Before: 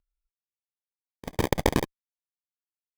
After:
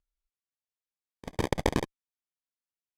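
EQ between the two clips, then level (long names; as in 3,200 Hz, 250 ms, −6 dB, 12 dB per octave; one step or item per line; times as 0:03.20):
Bessel low-pass filter 9,400 Hz, order 2
−3.5 dB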